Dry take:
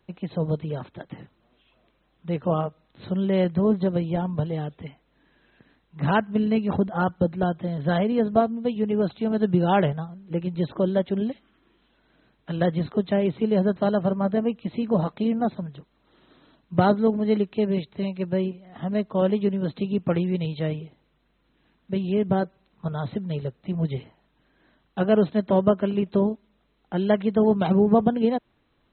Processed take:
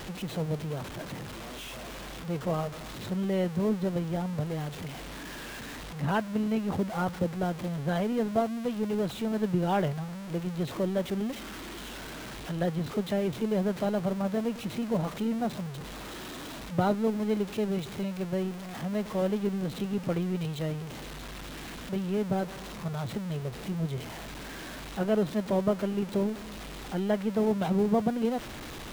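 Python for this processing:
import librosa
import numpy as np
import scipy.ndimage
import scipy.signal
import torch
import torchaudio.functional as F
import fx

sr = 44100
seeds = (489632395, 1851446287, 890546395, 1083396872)

y = x + 0.5 * 10.0 ** (-27.0 / 20.0) * np.sign(x)
y = y * librosa.db_to_amplitude(-8.0)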